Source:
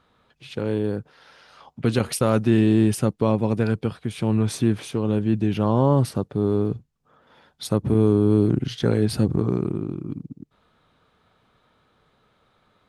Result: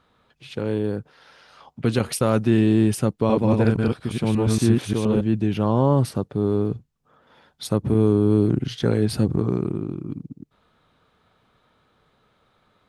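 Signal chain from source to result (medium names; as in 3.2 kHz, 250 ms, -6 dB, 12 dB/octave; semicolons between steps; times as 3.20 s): 3.18–5.21 s: chunks repeated in reverse 117 ms, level -0.5 dB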